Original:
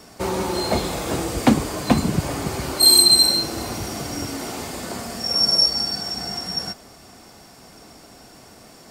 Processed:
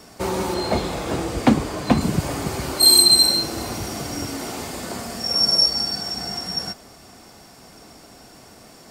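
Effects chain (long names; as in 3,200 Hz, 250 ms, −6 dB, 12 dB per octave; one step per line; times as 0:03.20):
0:00.54–0:02.01: high-shelf EQ 6,800 Hz −9.5 dB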